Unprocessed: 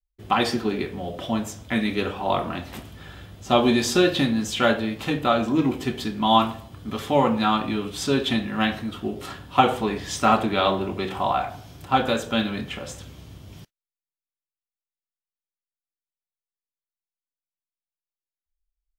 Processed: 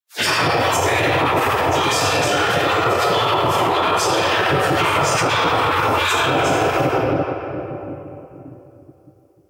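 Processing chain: single-diode clipper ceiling -12 dBFS; plain phase-vocoder stretch 0.5×; high-pass 160 Hz 24 dB/octave; tone controls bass +15 dB, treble +4 dB; phase dispersion lows, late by 113 ms, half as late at 640 Hz; gain riding within 4 dB 0.5 s; peaking EQ 3.8 kHz -7.5 dB 0.3 oct; simulated room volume 150 m³, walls hard, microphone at 1.7 m; spectral gate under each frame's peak -15 dB weak; loudness maximiser +20.5 dB; trim -8 dB; Opus 128 kbps 48 kHz

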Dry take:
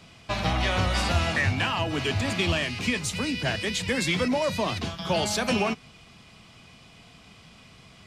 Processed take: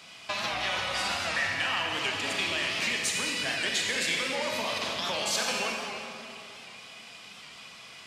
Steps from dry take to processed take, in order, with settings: compression, threshold -30 dBFS, peak gain reduction 11 dB; high-pass 1.2 kHz 6 dB/octave; reverberation RT60 2.9 s, pre-delay 29 ms, DRR -0.5 dB; warped record 78 rpm, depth 100 cents; trim +5 dB

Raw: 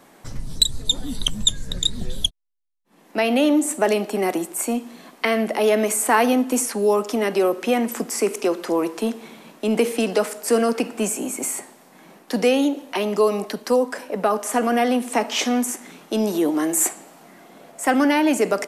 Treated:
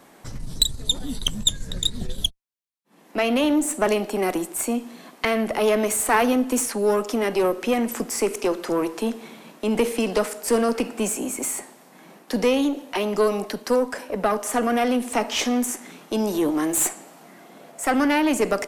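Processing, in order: single-diode clipper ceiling -16.5 dBFS

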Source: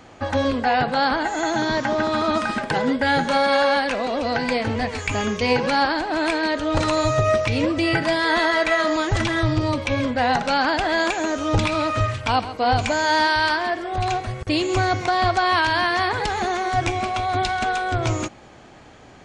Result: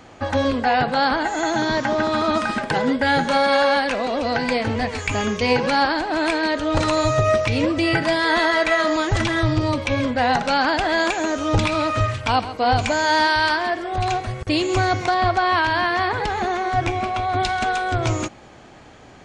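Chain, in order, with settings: 15.14–17.40 s: treble shelf 4.7 kHz -10 dB; trim +1 dB

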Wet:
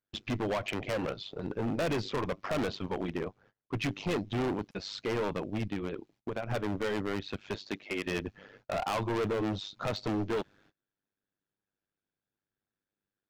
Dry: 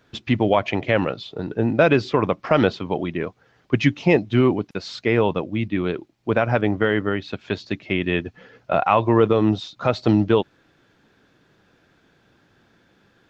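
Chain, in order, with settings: gate -52 dBFS, range -28 dB; 3.19–3.82 s: treble shelf 2.4 kHz -7.5 dB; 5.64–6.51 s: compression 6:1, threshold -24 dBFS, peak gain reduction 10 dB; 7.55–8.06 s: high-pass 180 Hz -> 420 Hz 12 dB/octave; AM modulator 100 Hz, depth 70%; hard clipper -25 dBFS, distortion -3 dB; trim -2.5 dB

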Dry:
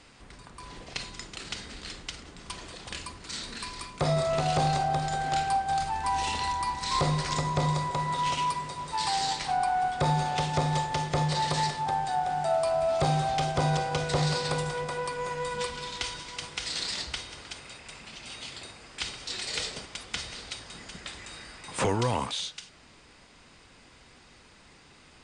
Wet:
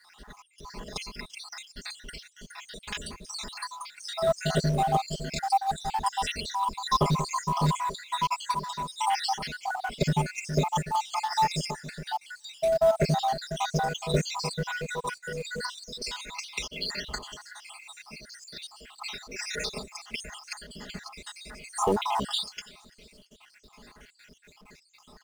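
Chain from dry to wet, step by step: random holes in the spectrogram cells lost 70%; comb 4.8 ms, depth 95%; in parallel at -10.5 dB: companded quantiser 4-bit; on the sum: feedback echo behind a high-pass 339 ms, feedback 54%, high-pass 3.8 kHz, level -23 dB

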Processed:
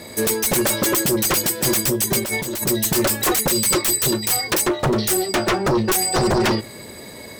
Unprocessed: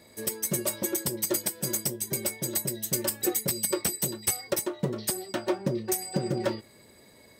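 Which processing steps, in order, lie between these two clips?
hum notches 60/120 Hz; sine folder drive 14 dB, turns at -14 dBFS; 2.19–2.67 s: compressor with a negative ratio -25 dBFS, ratio -1

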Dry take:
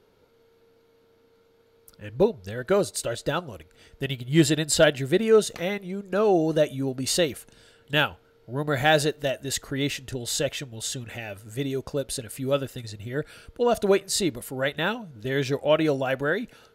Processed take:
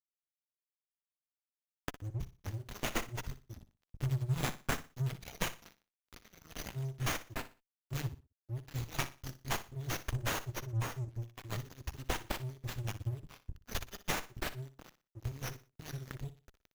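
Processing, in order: hum notches 50/100/150 Hz; reverb removal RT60 1.1 s; Chebyshev band-stop 120–5900 Hz, order 5; compression 12:1, threshold -41 dBFS, peak gain reduction 20 dB; flange 0.33 Hz, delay 2.8 ms, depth 5.6 ms, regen +42%; vibrato 7.4 Hz 19 cents; crossover distortion -58.5 dBFS; 10.67–11.22 s: distance through air 51 m; feedback delay 60 ms, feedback 28%, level -14 dB; sliding maximum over 5 samples; trim +17 dB

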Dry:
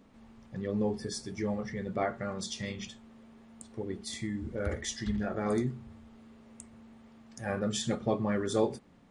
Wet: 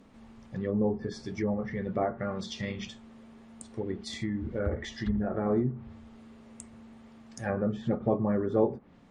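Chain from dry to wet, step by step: low-pass that closes with the level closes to 1 kHz, closed at -28.5 dBFS; trim +3 dB

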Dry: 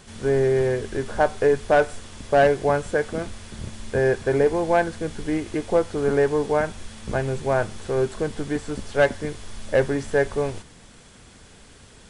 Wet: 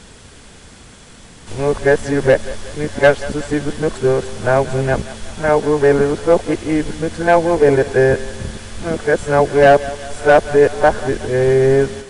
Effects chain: reverse the whole clip; thinning echo 184 ms, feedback 58%, high-pass 420 Hz, level -15.5 dB; trim +7.5 dB

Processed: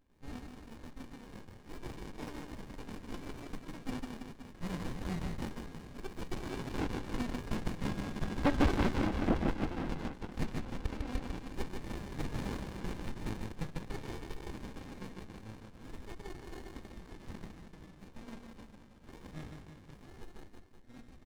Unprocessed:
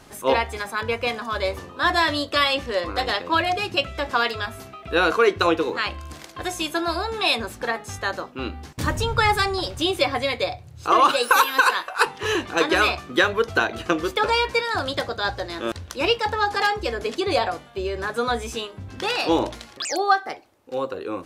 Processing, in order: four frequency bands reordered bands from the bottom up 3142; Doppler pass-by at 8.61 s, 22 m/s, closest 4.5 m; treble shelf 3.4 kHz -6 dB; comb 3.8 ms, depth 48%; low-pass that closes with the level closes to 610 Hz, closed at -34 dBFS; hard clipper -30.5 dBFS, distortion -15 dB; reverse bouncing-ball echo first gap 150 ms, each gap 1.15×, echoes 5; sliding maximum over 65 samples; trim +12.5 dB

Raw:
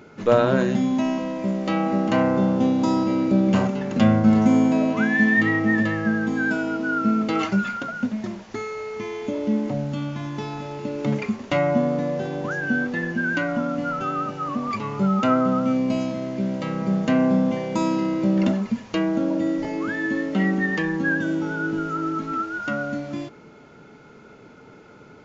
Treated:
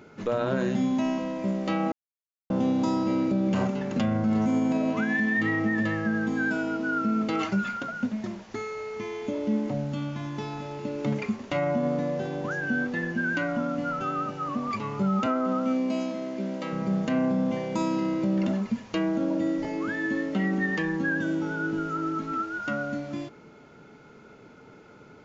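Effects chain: 15.26–16.73 s: high-pass 210 Hz 24 dB/octave; peak limiter -14 dBFS, peak gain reduction 8.5 dB; 1.92–2.50 s: mute; trim -3.5 dB

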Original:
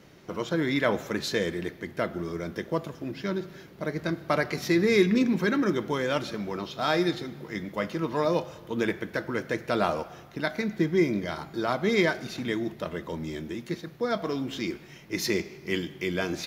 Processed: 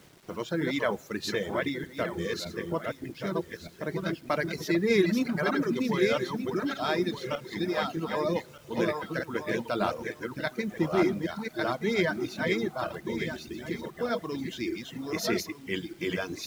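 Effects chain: backward echo that repeats 613 ms, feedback 46%, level -2 dB; reverb removal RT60 1.3 s; bit crusher 9-bit; trim -2.5 dB

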